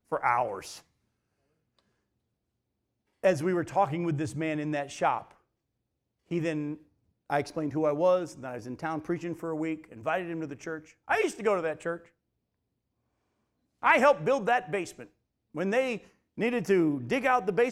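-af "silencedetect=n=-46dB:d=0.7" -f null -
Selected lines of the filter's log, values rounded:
silence_start: 0.80
silence_end: 3.24 | silence_duration: 2.44
silence_start: 5.32
silence_end: 6.31 | silence_duration: 0.99
silence_start: 12.00
silence_end: 13.82 | silence_duration: 1.82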